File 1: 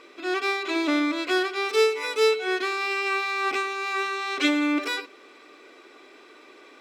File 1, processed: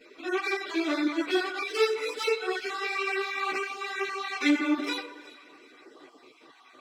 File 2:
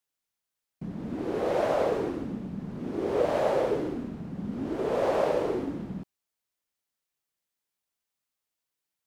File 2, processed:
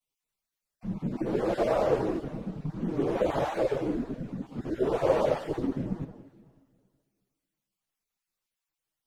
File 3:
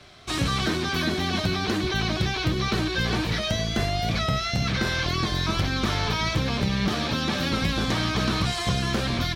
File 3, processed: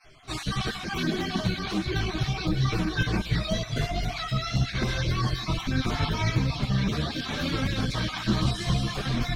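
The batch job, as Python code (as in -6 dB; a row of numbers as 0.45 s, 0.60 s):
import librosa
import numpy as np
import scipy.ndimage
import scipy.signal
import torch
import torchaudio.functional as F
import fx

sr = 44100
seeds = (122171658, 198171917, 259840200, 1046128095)

y = fx.spec_dropout(x, sr, seeds[0], share_pct=24)
y = fx.low_shelf(y, sr, hz=140.0, db=8.0)
y = fx.echo_alternate(y, sr, ms=186, hz=1800.0, feedback_pct=51, wet_db=-13)
y = fx.rev_schroeder(y, sr, rt60_s=2.1, comb_ms=27, drr_db=19.0)
y = fx.chorus_voices(y, sr, voices=6, hz=0.69, base_ms=11, depth_ms=4.9, mix_pct=70)
y = librosa.util.normalize(y) * 10.0 ** (-12 / 20.0)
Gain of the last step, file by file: -1.0 dB, +2.0 dB, -1.5 dB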